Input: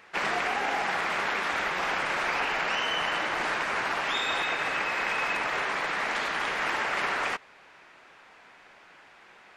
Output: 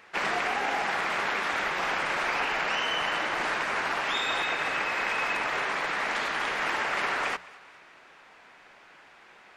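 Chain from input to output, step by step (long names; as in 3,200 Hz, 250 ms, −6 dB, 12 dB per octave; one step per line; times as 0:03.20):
mains-hum notches 60/120/180 Hz
on a send: feedback echo with a high-pass in the loop 212 ms, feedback 49%, level −20.5 dB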